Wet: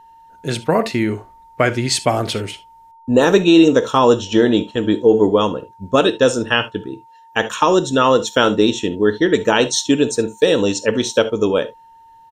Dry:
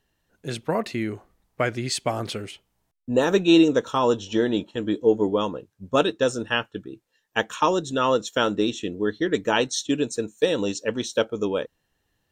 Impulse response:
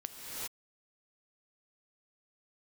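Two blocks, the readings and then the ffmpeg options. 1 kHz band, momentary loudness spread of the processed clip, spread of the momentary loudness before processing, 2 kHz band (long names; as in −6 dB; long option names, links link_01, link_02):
+7.5 dB, 11 LU, 12 LU, +7.5 dB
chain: -filter_complex "[0:a]aeval=exprs='val(0)+0.00282*sin(2*PI*910*n/s)':channel_layout=same[link_01];[1:a]atrim=start_sample=2205,atrim=end_sample=3528[link_02];[link_01][link_02]afir=irnorm=-1:irlink=0,aresample=32000,aresample=44100,alimiter=level_in=13dB:limit=-1dB:release=50:level=0:latency=1,volume=-1dB"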